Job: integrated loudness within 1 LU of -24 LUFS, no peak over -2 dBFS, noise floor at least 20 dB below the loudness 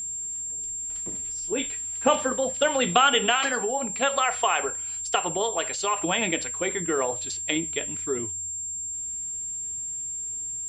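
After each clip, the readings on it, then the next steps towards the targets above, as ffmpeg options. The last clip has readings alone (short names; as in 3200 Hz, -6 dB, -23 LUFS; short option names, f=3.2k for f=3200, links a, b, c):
steady tone 7400 Hz; tone level -30 dBFS; loudness -25.5 LUFS; peak -5.0 dBFS; loudness target -24.0 LUFS
-> -af "bandreject=f=7.4k:w=30"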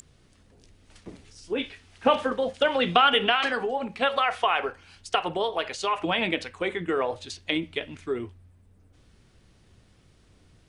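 steady tone none; loudness -26.0 LUFS; peak -5.5 dBFS; loudness target -24.0 LUFS
-> -af "volume=2dB"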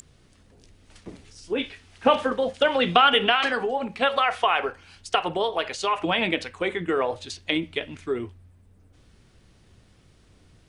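loudness -24.0 LUFS; peak -3.5 dBFS; noise floor -57 dBFS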